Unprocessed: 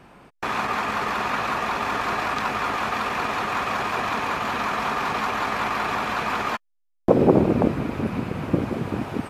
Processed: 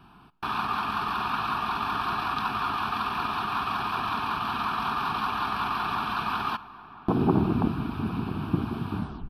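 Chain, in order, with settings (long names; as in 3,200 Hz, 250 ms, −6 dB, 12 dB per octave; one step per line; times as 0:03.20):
turntable brake at the end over 0.34 s
phaser with its sweep stopped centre 2,000 Hz, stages 6
slap from a distant wall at 170 metres, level −16 dB
dense smooth reverb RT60 1.9 s, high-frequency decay 0.95×, DRR 19.5 dB
level −1.5 dB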